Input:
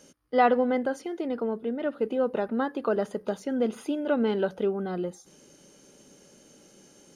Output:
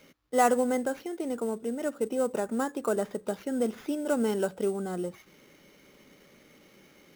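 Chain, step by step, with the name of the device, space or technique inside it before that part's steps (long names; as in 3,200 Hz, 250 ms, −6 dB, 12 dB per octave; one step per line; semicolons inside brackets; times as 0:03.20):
early companding sampler (sample-rate reduction 8,500 Hz, jitter 0%; log-companded quantiser 8 bits)
level −2 dB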